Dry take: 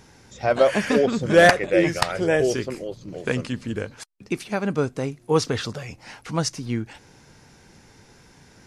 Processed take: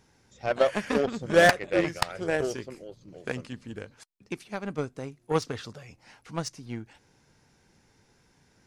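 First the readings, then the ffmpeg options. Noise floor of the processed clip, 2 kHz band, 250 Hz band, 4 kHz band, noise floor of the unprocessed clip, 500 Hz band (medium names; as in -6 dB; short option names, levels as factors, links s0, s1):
-66 dBFS, -5.0 dB, -8.0 dB, -6.0 dB, -54 dBFS, -6.5 dB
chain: -af "aeval=exprs='0.668*(cos(1*acos(clip(val(0)/0.668,-1,1)))-cos(1*PI/2))+0.0531*(cos(7*acos(clip(val(0)/0.668,-1,1)))-cos(7*PI/2))':c=same,volume=0.562"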